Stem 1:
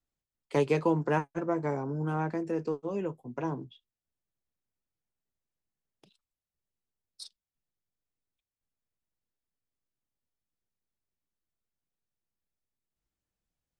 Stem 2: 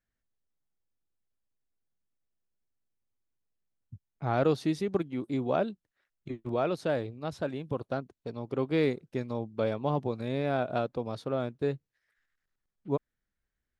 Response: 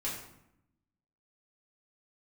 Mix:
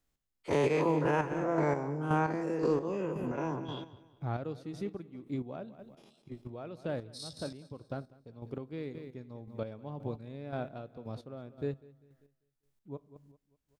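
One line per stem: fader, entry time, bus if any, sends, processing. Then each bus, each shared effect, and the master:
+2.5 dB, 0.00 s, no send, echo send −12.5 dB, every bin's largest magnitude spread in time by 120 ms
−9.5 dB, 0.00 s, send −20 dB, echo send −14.5 dB, low-shelf EQ 250 Hz +9 dB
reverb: on, RT60 0.80 s, pre-delay 4 ms
echo: repeating echo 197 ms, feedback 38%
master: square-wave tremolo 1.9 Hz, depth 60%, duty 30%; brickwall limiter −19.5 dBFS, peak gain reduction 11.5 dB

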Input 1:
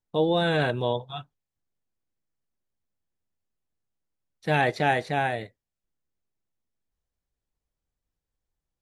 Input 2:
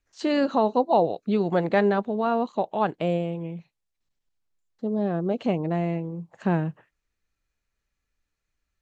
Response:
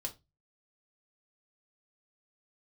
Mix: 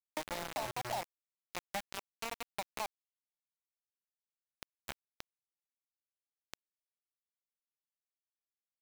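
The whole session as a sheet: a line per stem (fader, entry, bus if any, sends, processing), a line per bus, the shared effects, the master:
+2.5 dB, 0.00 s, send −20.5 dB, no echo send, Bessel low-pass filter 7,900 Hz, order 8; flat-topped bell 1,600 Hz −9.5 dB 2.5 octaves; comb filter 3.4 ms, depth 92%; automatic ducking −11 dB, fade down 1.90 s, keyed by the second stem
−6.0 dB, 0.00 s, send −18 dB, echo send −14.5 dB, low-shelf EQ 380 Hz −4 dB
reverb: on, RT60 0.20 s, pre-delay 3 ms
echo: single-tap delay 94 ms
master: drawn EQ curve 110 Hz 0 dB, 400 Hz −27 dB, 780 Hz +1 dB, 1,300 Hz −10 dB, 2,800 Hz −20 dB, 4,900 Hz −11 dB; bit reduction 5 bits; downward compressor 5 to 1, threshold −35 dBFS, peak gain reduction 10 dB

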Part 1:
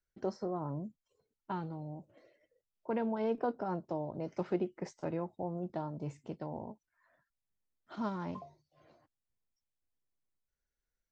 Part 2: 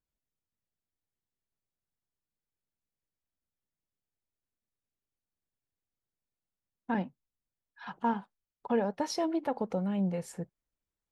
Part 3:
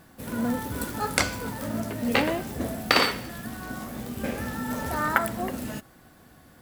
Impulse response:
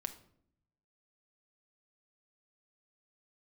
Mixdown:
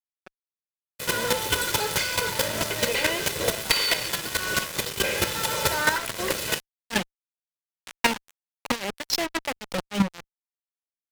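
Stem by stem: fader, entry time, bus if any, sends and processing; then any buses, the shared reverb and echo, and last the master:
+1.5 dB, 0.00 s, no send, high shelf with overshoot 1,600 Hz +8 dB, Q 1.5; band-pass on a step sequencer 7.7 Hz 370–4,200 Hz
−3.0 dB, 0.00 s, no send, sine wavefolder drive 6 dB, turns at −19 dBFS; power curve on the samples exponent 2; amplitude tremolo 3.7 Hz, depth 74%
0.0 dB, 0.80 s, no send, comb filter 2 ms, depth 98%; downward compressor 16 to 1, threshold −25 dBFS, peak gain reduction 14 dB; automatic ducking −13 dB, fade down 0.40 s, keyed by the second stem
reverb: not used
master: meter weighting curve D; fuzz pedal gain 39 dB, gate −32 dBFS; square-wave tremolo 4.6 Hz, depth 65%, duty 10%

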